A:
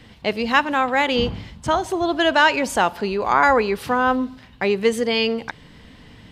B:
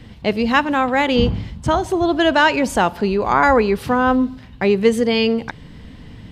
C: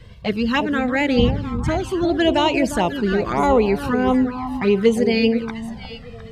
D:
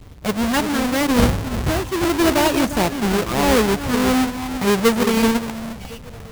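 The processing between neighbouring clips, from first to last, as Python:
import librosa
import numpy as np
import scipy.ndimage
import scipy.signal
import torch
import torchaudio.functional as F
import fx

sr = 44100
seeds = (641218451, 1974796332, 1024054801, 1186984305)

y1 = fx.low_shelf(x, sr, hz=350.0, db=9.5)
y2 = fx.echo_alternate(y1, sr, ms=353, hz=1000.0, feedback_pct=53, wet_db=-7)
y2 = fx.env_flanger(y2, sr, rest_ms=2.0, full_db=-10.0)
y3 = fx.halfwave_hold(y2, sr)
y3 = F.gain(torch.from_numpy(y3), -4.0).numpy()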